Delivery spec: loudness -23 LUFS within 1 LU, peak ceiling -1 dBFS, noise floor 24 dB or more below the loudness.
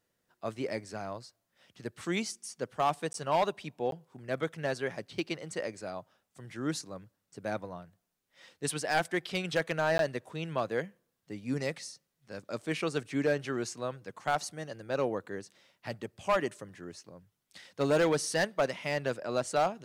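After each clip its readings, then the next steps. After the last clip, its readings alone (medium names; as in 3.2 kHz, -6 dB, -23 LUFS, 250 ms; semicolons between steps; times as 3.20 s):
clipped samples 0.4%; clipping level -20.5 dBFS; dropouts 3; longest dropout 12 ms; loudness -33.5 LUFS; peak level -20.5 dBFS; loudness target -23.0 LUFS
-> clip repair -20.5 dBFS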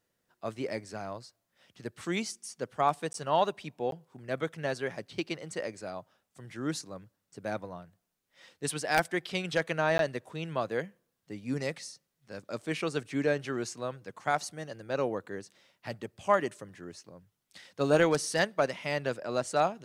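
clipped samples 0.0%; dropouts 3; longest dropout 12 ms
-> interpolate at 3.13/3.91/9.98 s, 12 ms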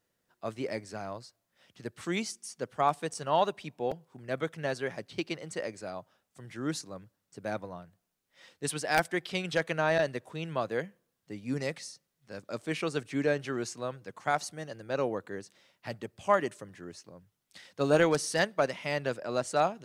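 dropouts 0; loudness -32.5 LUFS; peak level -11.5 dBFS; loudness target -23.0 LUFS
-> trim +9.5 dB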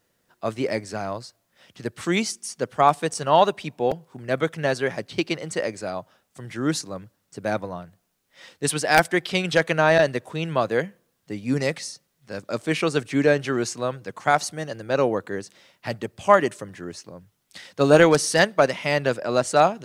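loudness -23.0 LUFS; peak level -2.0 dBFS; noise floor -72 dBFS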